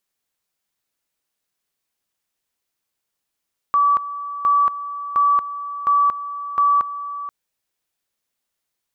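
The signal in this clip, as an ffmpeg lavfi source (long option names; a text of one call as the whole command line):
ffmpeg -f lavfi -i "aevalsrc='pow(10,(-12.5-13.5*gte(mod(t,0.71),0.23))/20)*sin(2*PI*1150*t)':duration=3.55:sample_rate=44100" out.wav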